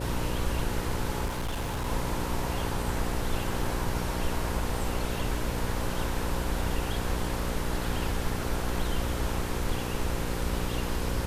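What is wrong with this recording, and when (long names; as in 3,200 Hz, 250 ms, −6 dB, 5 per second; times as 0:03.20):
mains buzz 60 Hz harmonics 9 −34 dBFS
0:01.25–0:01.87: clipping −27.5 dBFS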